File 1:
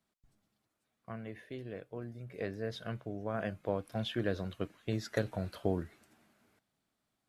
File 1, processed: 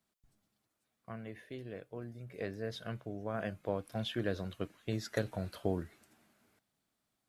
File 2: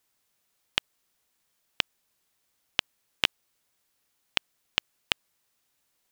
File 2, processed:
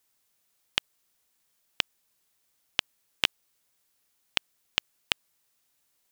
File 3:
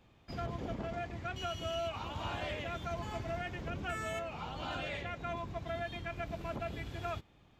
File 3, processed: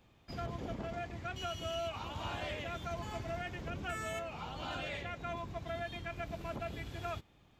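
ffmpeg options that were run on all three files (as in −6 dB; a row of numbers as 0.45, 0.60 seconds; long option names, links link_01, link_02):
-af "highshelf=frequency=5200:gain=4.5,volume=-1.5dB"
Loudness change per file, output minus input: −1.5, −0.5, −1.0 LU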